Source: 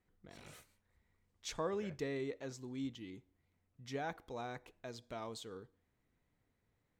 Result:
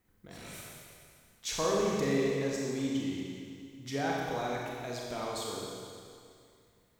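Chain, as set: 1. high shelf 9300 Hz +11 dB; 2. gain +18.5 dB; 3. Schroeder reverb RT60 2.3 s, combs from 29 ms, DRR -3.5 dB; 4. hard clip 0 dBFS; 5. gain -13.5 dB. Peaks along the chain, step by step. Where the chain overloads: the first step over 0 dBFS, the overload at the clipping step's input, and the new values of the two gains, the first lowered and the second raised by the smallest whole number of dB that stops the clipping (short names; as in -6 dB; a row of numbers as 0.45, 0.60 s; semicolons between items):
-26.5, -8.0, -4.5, -4.5, -18.0 dBFS; no overload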